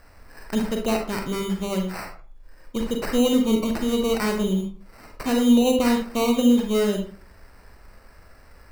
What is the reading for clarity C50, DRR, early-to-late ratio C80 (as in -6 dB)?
5.5 dB, 2.5 dB, 11.0 dB